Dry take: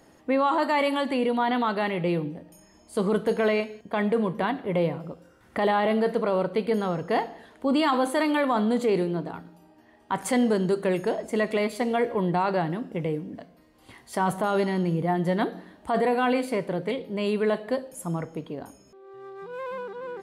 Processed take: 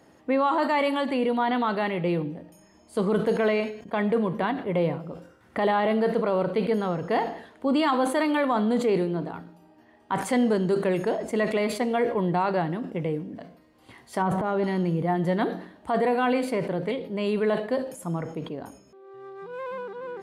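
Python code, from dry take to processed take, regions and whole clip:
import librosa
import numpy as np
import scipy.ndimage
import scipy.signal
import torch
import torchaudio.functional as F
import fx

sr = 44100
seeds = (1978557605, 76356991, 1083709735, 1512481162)

y = fx.chain(x, sr, fx.lowpass(hz=1400.0, slope=6),
    fx.transient(attack_db=-6, sustain_db=11), at=(14.22, 14.64))
y = scipy.signal.sosfilt(scipy.signal.butter(2, 63.0, 'highpass', fs=sr, output='sos'), y)
y = fx.high_shelf(y, sr, hz=5200.0, db=-5.5)
y = fx.sustainer(y, sr, db_per_s=94.0)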